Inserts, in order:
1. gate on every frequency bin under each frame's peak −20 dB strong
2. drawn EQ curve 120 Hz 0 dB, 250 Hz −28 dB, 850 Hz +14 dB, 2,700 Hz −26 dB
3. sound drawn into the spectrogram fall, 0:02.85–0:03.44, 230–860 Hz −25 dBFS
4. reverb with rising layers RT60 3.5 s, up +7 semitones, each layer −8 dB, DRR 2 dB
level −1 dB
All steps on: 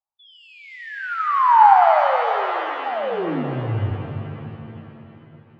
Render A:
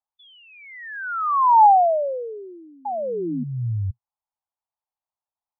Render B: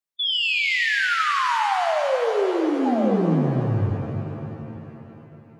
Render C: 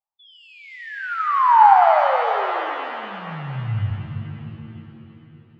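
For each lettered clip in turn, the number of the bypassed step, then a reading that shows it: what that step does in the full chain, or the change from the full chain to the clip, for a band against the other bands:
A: 4, 2 kHz band −5.0 dB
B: 2, change in crest factor −5.5 dB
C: 3, 250 Hz band −6.5 dB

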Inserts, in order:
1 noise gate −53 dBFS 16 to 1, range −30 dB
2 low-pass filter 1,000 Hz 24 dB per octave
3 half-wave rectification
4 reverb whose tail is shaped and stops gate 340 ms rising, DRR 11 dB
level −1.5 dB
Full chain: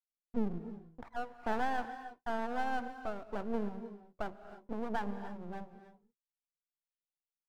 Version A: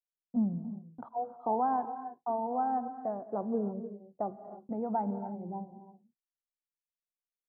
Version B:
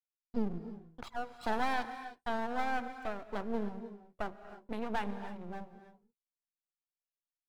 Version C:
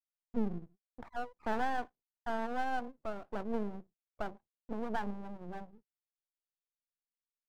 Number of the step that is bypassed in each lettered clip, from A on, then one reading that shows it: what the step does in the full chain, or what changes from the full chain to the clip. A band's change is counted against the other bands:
3, distortion level 0 dB
2, 4 kHz band +5.0 dB
4, change in momentary loudness spread +2 LU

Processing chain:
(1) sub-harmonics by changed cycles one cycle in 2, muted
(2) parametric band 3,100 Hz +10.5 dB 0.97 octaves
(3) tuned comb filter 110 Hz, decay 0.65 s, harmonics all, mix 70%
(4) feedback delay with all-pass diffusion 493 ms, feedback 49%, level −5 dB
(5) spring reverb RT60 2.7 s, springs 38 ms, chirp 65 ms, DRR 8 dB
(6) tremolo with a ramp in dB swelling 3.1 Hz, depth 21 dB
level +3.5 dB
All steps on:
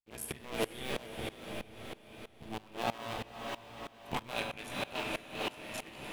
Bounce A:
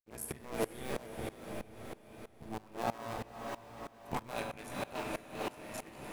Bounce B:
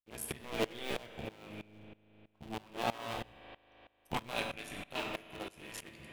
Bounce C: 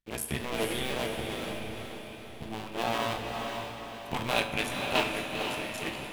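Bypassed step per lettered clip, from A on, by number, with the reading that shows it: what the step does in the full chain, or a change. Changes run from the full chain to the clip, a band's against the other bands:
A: 2, 4 kHz band −8.5 dB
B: 4, change in momentary loudness spread +7 LU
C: 6, change in crest factor −2.0 dB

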